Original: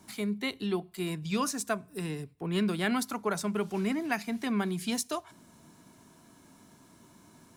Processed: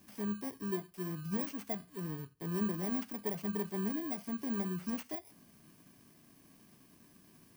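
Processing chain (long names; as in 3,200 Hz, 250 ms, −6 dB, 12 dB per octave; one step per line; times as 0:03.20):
samples in bit-reversed order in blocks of 32 samples
de-essing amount 95%
flanger 0.57 Hz, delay 3.8 ms, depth 4.2 ms, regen −74%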